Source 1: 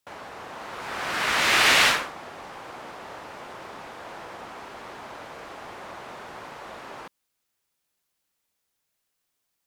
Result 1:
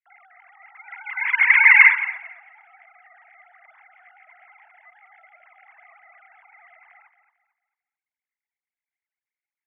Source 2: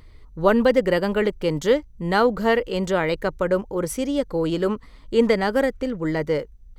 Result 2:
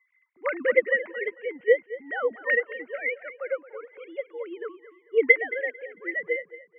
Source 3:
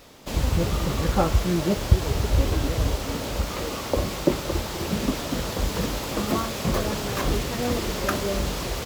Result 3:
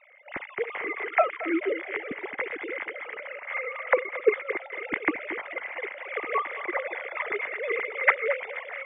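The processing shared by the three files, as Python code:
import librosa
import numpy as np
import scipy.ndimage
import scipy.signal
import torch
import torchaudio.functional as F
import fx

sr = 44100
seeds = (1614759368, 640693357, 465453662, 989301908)

p1 = fx.sine_speech(x, sr)
p2 = fx.lowpass_res(p1, sr, hz=2100.0, q=11.0)
p3 = p2 + fx.echo_feedback(p2, sr, ms=223, feedback_pct=33, wet_db=-11.0, dry=0)
p4 = fx.upward_expand(p3, sr, threshold_db=-29.0, expansion=1.5)
y = p4 * 10.0 ** (-5.5 / 20.0)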